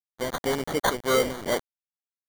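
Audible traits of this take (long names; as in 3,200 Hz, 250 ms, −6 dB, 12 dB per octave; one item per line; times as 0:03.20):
tremolo triangle 2.8 Hz, depth 50%
a quantiser's noise floor 6 bits, dither none
phaser sweep stages 6, 2 Hz, lowest notch 760–2,700 Hz
aliases and images of a low sample rate 2,600 Hz, jitter 0%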